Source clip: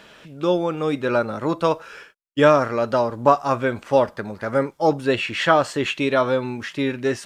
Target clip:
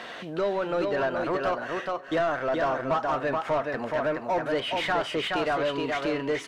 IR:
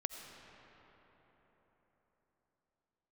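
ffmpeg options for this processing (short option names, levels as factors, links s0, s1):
-filter_complex "[0:a]acompressor=threshold=0.0126:ratio=2,asplit=2[s0][s1];[s1]aecho=0:1:473:0.531[s2];[s0][s2]amix=inputs=2:normalize=0,asetrate=49392,aresample=44100,asplit=2[s3][s4];[s4]highpass=f=720:p=1,volume=8.91,asoftclip=type=tanh:threshold=0.158[s5];[s3][s5]amix=inputs=2:normalize=0,lowpass=f=1400:p=1,volume=0.501,asplit=2[s6][s7];[s7]aecho=0:1:630:0.0944[s8];[s6][s8]amix=inputs=2:normalize=0"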